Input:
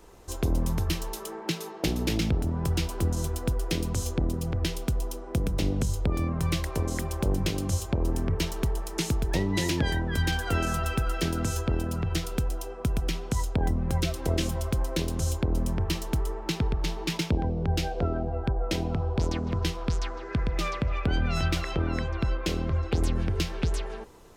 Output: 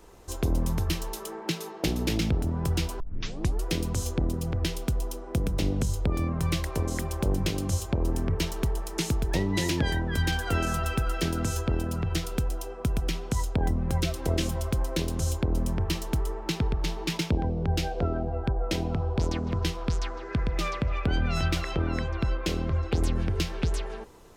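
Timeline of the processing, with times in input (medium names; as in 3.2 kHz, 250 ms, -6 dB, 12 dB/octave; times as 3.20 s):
3.00 s: tape start 0.64 s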